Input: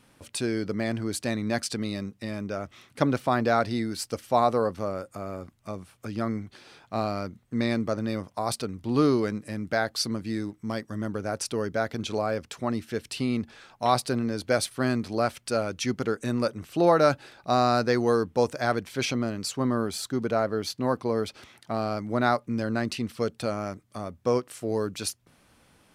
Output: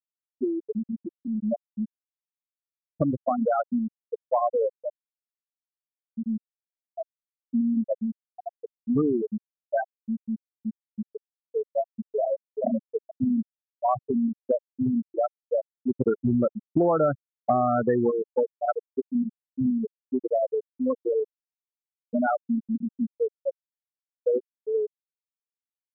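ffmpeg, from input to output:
-filter_complex "[0:a]asplit=2[a][b];[b]afade=t=in:st=11.78:d=0.01,afade=t=out:st=12.61:d=0.01,aecho=0:1:430|860|1290|1720|2150|2580|3010|3440|3870|4300|4730|5160:0.749894|0.562421|0.421815|0.316362|0.237271|0.177953|0.133465|0.100099|0.0750741|0.0563056|0.0422292|0.0316719[c];[a][c]amix=inputs=2:normalize=0,asplit=3[d][e][f];[d]afade=t=out:st=16:d=0.02[g];[e]aeval=exprs='0.447*sin(PI/2*1.41*val(0)/0.447)':c=same,afade=t=in:st=16:d=0.02,afade=t=out:st=18.09:d=0.02[h];[f]afade=t=in:st=18.09:d=0.02[i];[g][h][i]amix=inputs=3:normalize=0,afftfilt=real='re*gte(hypot(re,im),0.355)':imag='im*gte(hypot(re,im),0.355)':win_size=1024:overlap=0.75,lowpass=1.8k,acompressor=threshold=-27dB:ratio=5,volume=6.5dB"

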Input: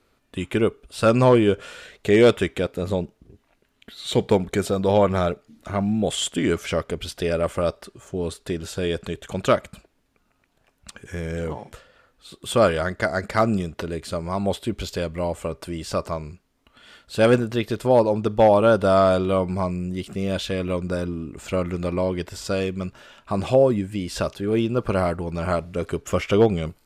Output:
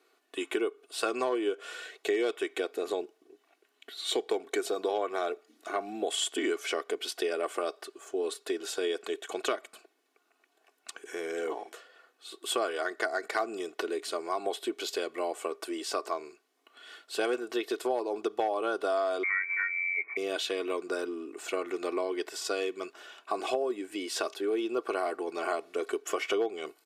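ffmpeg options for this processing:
-filter_complex "[0:a]asettb=1/sr,asplit=3[a][b][c];[a]atrim=end=19.234[d];[b]atrim=start=19.23:end=20.17,asetpts=PTS-STARTPTS,afade=t=in:d=0.004:c=qsin,afade=t=out:st=0.936:d=0.004:c=qsin,lowpass=f=2.1k:t=q:w=0.5098,lowpass=f=2.1k:t=q:w=0.6013,lowpass=f=2.1k:t=q:w=0.9,lowpass=f=2.1k:t=q:w=2.563,afreqshift=-2500[e];[c]atrim=start=20.166[f];[d][e]acrossfade=d=0.004:c1=hsin:c2=qsin[g];[g][f]acrossfade=d=0.004:c1=qsin:c2=hsin,highpass=f=340:w=0.5412,highpass=f=340:w=1.3066,aecho=1:1:2.7:0.68,acompressor=threshold=-24dB:ratio=5,volume=-3dB"

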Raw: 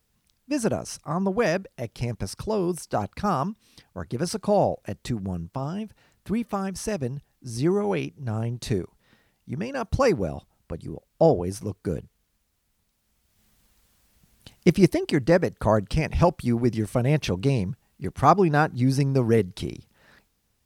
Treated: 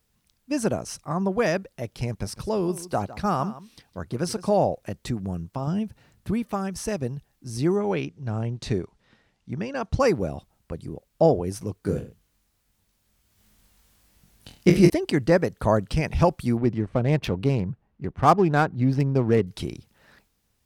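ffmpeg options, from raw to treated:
-filter_complex "[0:a]asettb=1/sr,asplit=3[a][b][c];[a]atrim=end=2.094[d];[b]atrim=start=2.09:end=4.58,asetpts=PTS-STARTPTS,afade=t=in:d=0.004:c=qsin,afade=t=out:st=2.486:d=0.004:c=qsin,aecho=1:1:157:0.15,atrim=end_sample=109809[e];[c]atrim=start=4.576[f];[d][e]acrossfade=d=0.004:c1=hsin:c2=qsin[g];[g][f]acrossfade=d=0.004:c1=qsin:c2=hsin,asettb=1/sr,asplit=3[h][i][j];[h]atrim=end=5.674[k];[i]atrim=start=5.67:end=6.31,asetpts=PTS-STARTPTS,afade=t=in:d=0.004:c=qsin,afade=t=out:st=0.636:d=0.004:c=qsin,equalizer=f=110:t=o:w=2.7:g=8[l];[j]atrim=start=6.306[m];[k][l]acrossfade=d=0.004:c1=hsin:c2=qsin[n];[n][m]acrossfade=d=0.004:c1=qsin:c2=hsin,asettb=1/sr,asplit=3[o][p][q];[o]atrim=end=7.764[r];[p]atrim=start=7.76:end=10,asetpts=PTS-STARTPTS,afade=t=in:d=0.004:c=qsin,afade=t=out:st=2.236:d=0.004:c=qsin,lowpass=6.6k[s];[q]atrim=start=9.996[t];[r][s]acrossfade=d=0.004:c1=hsin:c2=qsin[u];[u][t]acrossfade=d=0.004:c1=qsin:c2=hsin,asettb=1/sr,asplit=3[v][w][x];[v]atrim=end=11.814[y];[w]atrim=start=11.81:end=14.9,asetpts=PTS-STARTPTS,afade=t=in:d=0.004:c=qsin,afade=t=out:st=3.086:d=0.004:c=qsin,aecho=1:1:20|43|69.45|99.87|134.8:0.631|0.398|0.251|0.158|0.1,atrim=end_sample=136269[z];[x]atrim=start=14.896[aa];[y][z]acrossfade=d=0.004:c1=hsin:c2=qsin[ab];[ab][aa]acrossfade=d=0.004:c1=qsin:c2=hsin,asettb=1/sr,asplit=3[ac][ad][ae];[ac]atrim=end=16.574[af];[ad]atrim=start=16.57:end=19.47,asetpts=PTS-STARTPTS,afade=t=in:d=0.004:c=qsin,afade=t=out:st=2.896:d=0.004:c=qsin,adynamicsmooth=sensitivity=3.5:basefreq=1.5k[ag];[ae]atrim=start=19.466[ah];[af][ag]acrossfade=d=0.004:c1=hsin:c2=qsin[ai];[ai][ah]acrossfade=d=0.004:c1=qsin:c2=hsin"

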